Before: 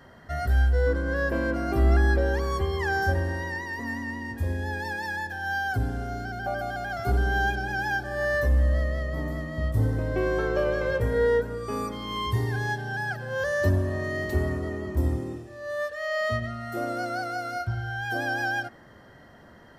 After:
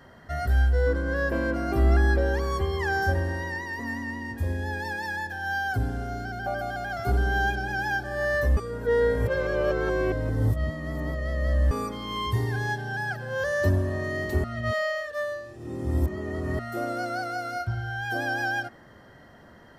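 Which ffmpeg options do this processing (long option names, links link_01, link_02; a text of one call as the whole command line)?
ffmpeg -i in.wav -filter_complex "[0:a]asplit=5[link_01][link_02][link_03][link_04][link_05];[link_01]atrim=end=8.572[link_06];[link_02]atrim=start=8.568:end=11.712,asetpts=PTS-STARTPTS,areverse[link_07];[link_03]atrim=start=11.708:end=14.442[link_08];[link_04]atrim=start=14.438:end=16.592,asetpts=PTS-STARTPTS,areverse[link_09];[link_05]atrim=start=16.588[link_10];[link_06][link_07]acrossfade=duration=0.004:curve1=hsin:curve2=hsin[link_11];[link_11][link_08]acrossfade=duration=0.004:curve1=hsin:curve2=hsin[link_12];[link_12][link_09]acrossfade=duration=0.004:curve1=hsin:curve2=hsin[link_13];[link_13][link_10]acrossfade=duration=0.004:curve1=hsin:curve2=hsin" out.wav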